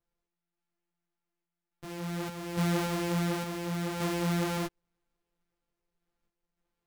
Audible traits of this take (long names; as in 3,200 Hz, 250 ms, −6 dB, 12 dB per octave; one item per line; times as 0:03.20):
a buzz of ramps at a fixed pitch in blocks of 256 samples
sample-and-hold tremolo 3.5 Hz
a shimmering, thickened sound